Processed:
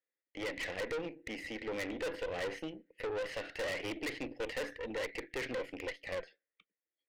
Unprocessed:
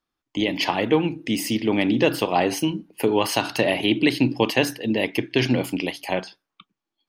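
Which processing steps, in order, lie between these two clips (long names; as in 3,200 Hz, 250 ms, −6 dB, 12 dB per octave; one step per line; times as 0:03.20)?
pair of resonant band-passes 990 Hz, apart 1.9 octaves
tube saturation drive 36 dB, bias 0.65
level +2 dB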